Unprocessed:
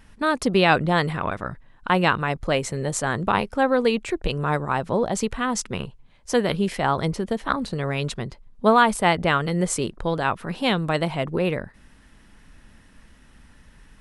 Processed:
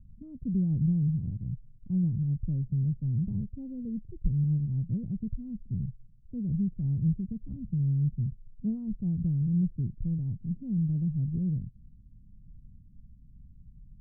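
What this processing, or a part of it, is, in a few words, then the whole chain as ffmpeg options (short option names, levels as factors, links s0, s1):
the neighbour's flat through the wall: -af "lowpass=f=180:w=0.5412,lowpass=f=180:w=1.3066,equalizer=f=120:t=o:w=0.72:g=5"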